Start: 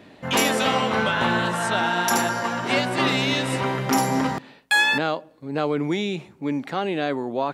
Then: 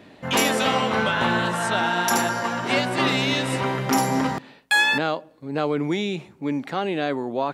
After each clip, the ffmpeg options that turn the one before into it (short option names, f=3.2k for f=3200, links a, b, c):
-af anull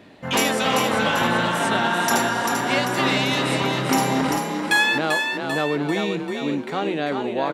-filter_complex "[0:a]asplit=7[a][b][c][d][e][f][g];[b]adelay=392,afreqshift=36,volume=-5dB[h];[c]adelay=784,afreqshift=72,volume=-10.8dB[i];[d]adelay=1176,afreqshift=108,volume=-16.7dB[j];[e]adelay=1568,afreqshift=144,volume=-22.5dB[k];[f]adelay=1960,afreqshift=180,volume=-28.4dB[l];[g]adelay=2352,afreqshift=216,volume=-34.2dB[m];[a][h][i][j][k][l][m]amix=inputs=7:normalize=0"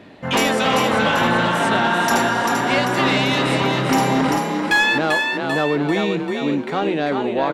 -af "aeval=exprs='0.501*sin(PI/2*1.58*val(0)/0.501)':c=same,highshelf=f=6k:g=-8,volume=-3.5dB"